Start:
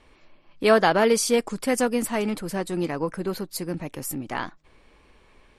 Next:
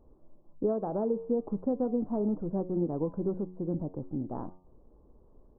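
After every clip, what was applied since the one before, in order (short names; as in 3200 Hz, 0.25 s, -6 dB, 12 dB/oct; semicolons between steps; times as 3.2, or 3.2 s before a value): de-hum 91.34 Hz, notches 13; compressor 10:1, threshold -22 dBFS, peak gain reduction 10.5 dB; Gaussian blur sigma 12 samples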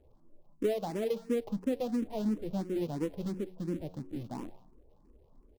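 switching dead time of 0.16 ms; echo 0.194 s -23.5 dB; endless phaser +2.9 Hz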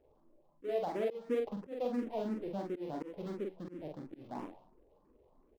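tone controls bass -12 dB, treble -14 dB; doubler 45 ms -3.5 dB; auto swell 0.18 s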